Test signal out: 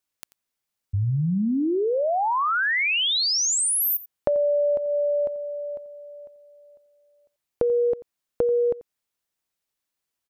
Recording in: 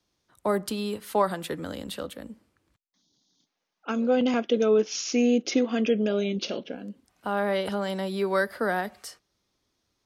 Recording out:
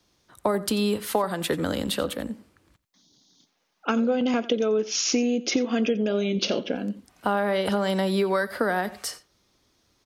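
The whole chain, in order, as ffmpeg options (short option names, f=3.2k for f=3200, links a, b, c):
-af "acompressor=threshold=-29dB:ratio=12,aecho=1:1:88:0.126,volume=9dB"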